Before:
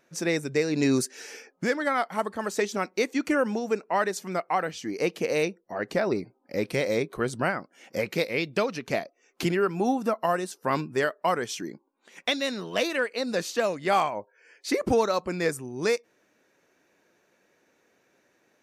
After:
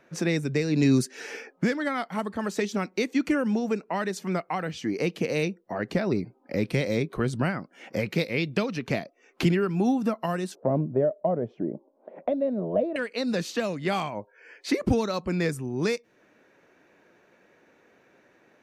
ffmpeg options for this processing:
ffmpeg -i in.wav -filter_complex "[0:a]asettb=1/sr,asplit=3[link_01][link_02][link_03];[link_01]atrim=end=10.554[link_04];[link_02]atrim=start=10.55:end=12.96,asetpts=PTS-STARTPTS,afade=type=in:duration=0.004:curve=qsin,afade=type=out:start_time=2.406:duration=0.004:curve=qsin,lowpass=frequency=620:width_type=q:width=7.3[link_05];[link_03]atrim=start=12.956[link_06];[link_04][link_05]acrossfade=duration=0.004:curve1=hsin:curve2=qsin[link_07];[link_07][link_06]acrossfade=duration=0.004:curve1=qsin:curve2=hsin,bass=frequency=250:gain=1,treble=frequency=4000:gain=-12,acrossover=split=250|3000[link_08][link_09][link_10];[link_09]acompressor=threshold=-39dB:ratio=3[link_11];[link_08][link_11][link_10]amix=inputs=3:normalize=0,volume=7dB" out.wav

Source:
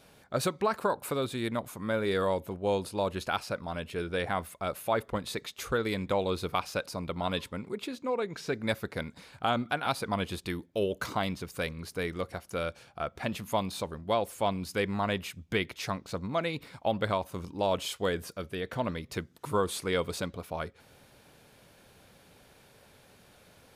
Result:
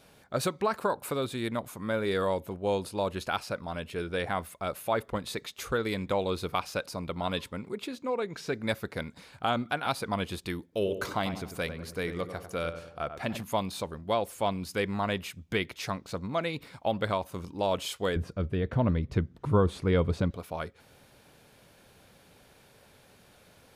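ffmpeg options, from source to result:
ffmpeg -i in.wav -filter_complex "[0:a]asettb=1/sr,asplit=3[link_01][link_02][link_03];[link_01]atrim=end=10.634[link_04];[link_02]atrim=start=10.63:end=13.43,asetpts=PTS-STARTPTS,afade=type=in:duration=0.004:curve=qsin,afade=type=out:start_time=2.796:duration=0.004:curve=qsin,asplit=2[link_05][link_06];[link_06]adelay=96,lowpass=frequency=1800:poles=1,volume=-9dB,asplit=2[link_07][link_08];[link_08]adelay=96,lowpass=frequency=1800:poles=1,volume=0.51,asplit=2[link_09][link_10];[link_10]adelay=96,lowpass=frequency=1800:poles=1,volume=0.51,asplit=2[link_11][link_12];[link_12]adelay=96,lowpass=frequency=1800:poles=1,volume=0.51,asplit=2[link_13][link_14];[link_14]adelay=96,lowpass=frequency=1800:poles=1,volume=0.51,asplit=2[link_15][link_16];[link_16]adelay=96,lowpass=frequency=1800:poles=1,volume=0.51[link_17];[link_05][link_07][link_09][link_11][link_13][link_15][link_17]amix=inputs=7:normalize=0,atrim=end_sample=123480[link_18];[link_03]atrim=start=13.426[link_19];[link_04][link_18]acrossfade=duration=0.004:curve1=hsin:curve2=qsin[link_20];[link_20][link_19]acrossfade=duration=0.004:curve1=qsin:curve2=hsin,asettb=1/sr,asplit=3[link_21][link_22][link_23];[link_21]atrim=end=18.164[link_24];[link_22]atrim=start=18.16:end=20.31,asetpts=PTS-STARTPTS,afade=type=in:duration=0.004:curve=qsin,afade=type=out:start_time=2.146:duration=0.004:curve=qsin,aemphasis=mode=reproduction:type=riaa[link_25];[link_23]atrim=start=20.306[link_26];[link_24][link_25]acrossfade=duration=0.004:curve1=hsin:curve2=qsin[link_27];[link_27][link_26]acrossfade=duration=0.004:curve1=qsin:curve2=hsin" out.wav

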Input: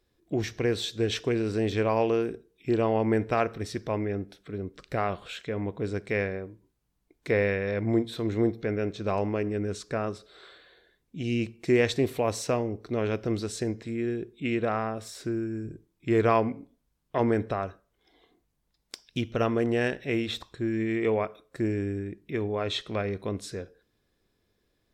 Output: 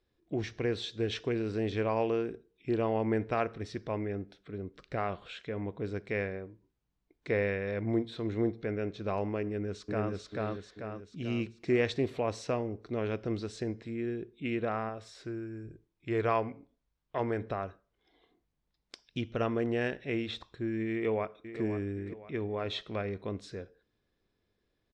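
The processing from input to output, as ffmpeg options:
ffmpeg -i in.wav -filter_complex "[0:a]asplit=2[link_01][link_02];[link_02]afade=type=in:start_time=9.44:duration=0.01,afade=type=out:start_time=10.12:duration=0.01,aecho=0:1:440|880|1320|1760|2200|2640|3080:0.944061|0.47203|0.236015|0.118008|0.0590038|0.0295019|0.014751[link_03];[link_01][link_03]amix=inputs=2:normalize=0,asettb=1/sr,asplit=3[link_04][link_05][link_06];[link_04]atrim=end=14.894[link_07];[link_05]atrim=start=14.89:end=17.42,asetpts=PTS-STARTPTS,afade=type=in:duration=0.004:curve=qsin,afade=type=out:start_time=2.526:duration=0.004:curve=qsin,equalizer=frequency=220:width=0.98:gain=-6[link_08];[link_06]atrim=start=17.416[link_09];[link_07][link_08]acrossfade=duration=0.004:curve1=hsin:curve2=qsin[link_10];[link_10][link_09]acrossfade=duration=0.004:curve1=qsin:curve2=hsin,asplit=2[link_11][link_12];[link_12]afade=type=in:start_time=20.92:duration=0.01,afade=type=out:start_time=21.61:duration=0.01,aecho=0:1:520|1040|1560|2080:0.298538|0.119415|0.0477661|0.0191064[link_13];[link_11][link_13]amix=inputs=2:normalize=0,lowpass=4900,volume=-5dB" out.wav

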